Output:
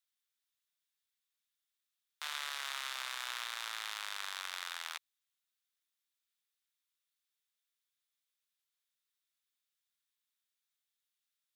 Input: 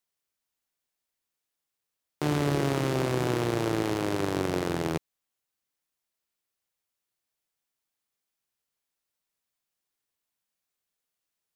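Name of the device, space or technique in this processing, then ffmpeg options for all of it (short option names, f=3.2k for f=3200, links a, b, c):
headphones lying on a table: -af "highpass=f=1.2k:w=0.5412,highpass=f=1.2k:w=1.3066,equalizer=f=3.6k:t=o:w=0.3:g=7.5,volume=-4dB"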